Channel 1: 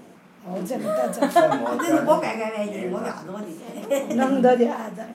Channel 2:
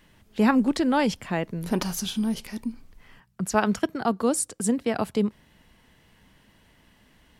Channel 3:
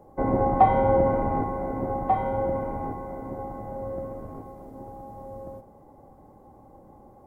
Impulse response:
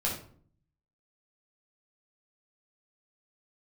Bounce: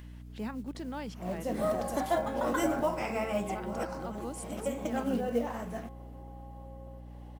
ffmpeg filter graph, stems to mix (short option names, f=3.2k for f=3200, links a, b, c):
-filter_complex "[0:a]alimiter=limit=-13.5dB:level=0:latency=1:release=363,acrusher=bits=7:mode=log:mix=0:aa=0.000001,adelay=750,volume=-5dB[a];[1:a]acrusher=bits=7:mode=log:mix=0:aa=0.000001,volume=-17dB,asplit=2[b][c];[2:a]lowshelf=f=320:g=-12,adelay=1400,volume=-11dB[d];[c]apad=whole_len=259755[e];[a][e]sidechaincompress=threshold=-45dB:ratio=8:attack=28:release=143[f];[b][d]amix=inputs=2:normalize=0,acompressor=mode=upward:threshold=-46dB:ratio=2.5,alimiter=level_in=4dB:limit=-24dB:level=0:latency=1:release=198,volume=-4dB,volume=0dB[g];[f][g]amix=inputs=2:normalize=0,aeval=exprs='val(0)+0.00562*(sin(2*PI*60*n/s)+sin(2*PI*2*60*n/s)/2+sin(2*PI*3*60*n/s)/3+sin(2*PI*4*60*n/s)/4+sin(2*PI*5*60*n/s)/5)':c=same"